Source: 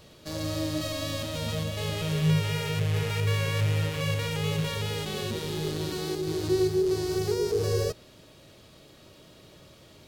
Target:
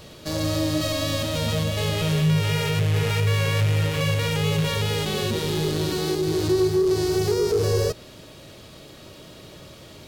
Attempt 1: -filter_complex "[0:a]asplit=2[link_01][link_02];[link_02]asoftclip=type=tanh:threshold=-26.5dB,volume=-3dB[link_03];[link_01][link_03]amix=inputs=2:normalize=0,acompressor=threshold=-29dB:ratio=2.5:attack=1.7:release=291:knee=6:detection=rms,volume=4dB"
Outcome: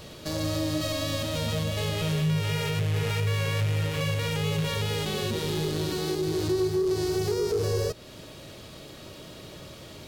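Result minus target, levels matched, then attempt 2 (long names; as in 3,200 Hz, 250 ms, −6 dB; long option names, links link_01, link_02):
downward compressor: peak gain reduction +5.5 dB
-filter_complex "[0:a]asplit=2[link_01][link_02];[link_02]asoftclip=type=tanh:threshold=-26.5dB,volume=-3dB[link_03];[link_01][link_03]amix=inputs=2:normalize=0,acompressor=threshold=-19.5dB:ratio=2.5:attack=1.7:release=291:knee=6:detection=rms,volume=4dB"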